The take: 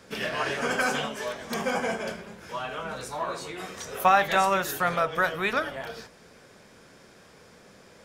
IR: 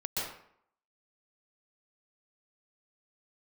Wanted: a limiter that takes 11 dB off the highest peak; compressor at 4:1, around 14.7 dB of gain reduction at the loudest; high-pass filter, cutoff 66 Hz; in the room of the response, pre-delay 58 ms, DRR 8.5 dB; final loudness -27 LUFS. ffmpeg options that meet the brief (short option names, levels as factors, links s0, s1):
-filter_complex "[0:a]highpass=66,acompressor=threshold=0.0224:ratio=4,alimiter=level_in=1.88:limit=0.0631:level=0:latency=1,volume=0.531,asplit=2[s0][s1];[1:a]atrim=start_sample=2205,adelay=58[s2];[s1][s2]afir=irnorm=-1:irlink=0,volume=0.211[s3];[s0][s3]amix=inputs=2:normalize=0,volume=3.76"